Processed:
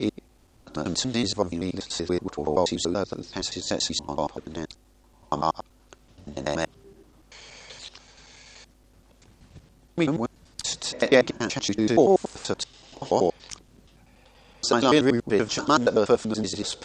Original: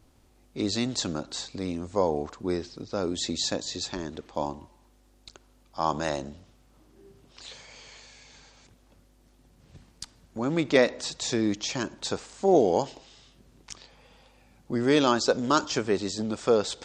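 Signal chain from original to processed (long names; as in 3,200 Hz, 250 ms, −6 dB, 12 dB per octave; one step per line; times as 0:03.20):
slices reordered back to front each 95 ms, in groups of 7
level +3 dB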